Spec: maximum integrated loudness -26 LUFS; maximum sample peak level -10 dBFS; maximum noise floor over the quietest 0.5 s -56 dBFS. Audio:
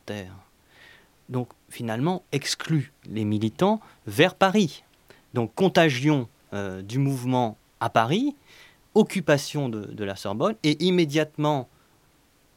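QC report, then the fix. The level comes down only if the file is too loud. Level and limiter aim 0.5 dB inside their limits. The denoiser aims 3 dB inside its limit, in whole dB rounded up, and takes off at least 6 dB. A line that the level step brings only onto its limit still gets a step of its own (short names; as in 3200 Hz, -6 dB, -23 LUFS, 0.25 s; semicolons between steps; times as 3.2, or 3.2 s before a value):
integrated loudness -25.0 LUFS: fail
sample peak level -4.0 dBFS: fail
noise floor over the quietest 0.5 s -61 dBFS: OK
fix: gain -1.5 dB; limiter -10.5 dBFS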